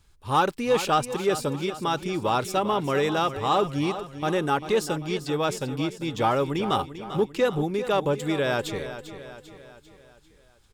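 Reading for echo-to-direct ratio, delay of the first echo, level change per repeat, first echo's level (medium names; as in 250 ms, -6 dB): -11.0 dB, 395 ms, -6.0 dB, -12.0 dB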